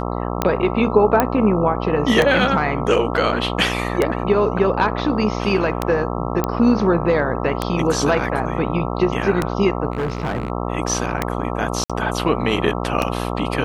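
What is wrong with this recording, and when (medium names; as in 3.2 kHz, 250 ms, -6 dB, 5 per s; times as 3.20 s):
buzz 60 Hz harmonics 22 -24 dBFS
tick 33 1/3 rpm -4 dBFS
1.20 s: pop -2 dBFS
6.44 s: pop -6 dBFS
9.92–10.50 s: clipped -18 dBFS
11.84–11.90 s: dropout 56 ms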